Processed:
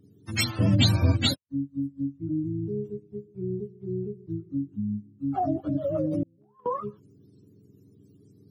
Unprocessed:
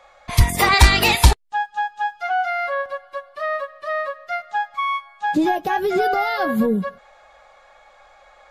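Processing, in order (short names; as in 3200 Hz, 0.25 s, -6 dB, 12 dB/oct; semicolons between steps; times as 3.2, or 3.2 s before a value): spectrum mirrored in octaves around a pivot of 480 Hz; 6.23–6.66 gate -15 dBFS, range -33 dB; gain -6.5 dB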